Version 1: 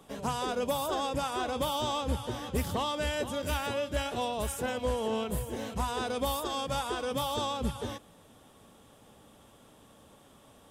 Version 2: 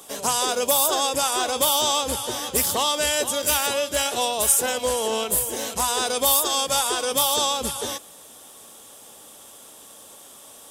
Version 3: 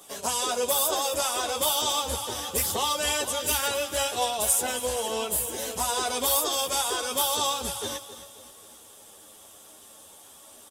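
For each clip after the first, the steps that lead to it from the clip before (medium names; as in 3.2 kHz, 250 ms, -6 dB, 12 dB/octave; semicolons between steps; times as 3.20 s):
tone controls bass -14 dB, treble +14 dB; trim +8 dB
feedback delay 268 ms, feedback 46%, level -13.5 dB; chorus voices 6, 0.67 Hz, delay 11 ms, depth 1.8 ms; trim -1.5 dB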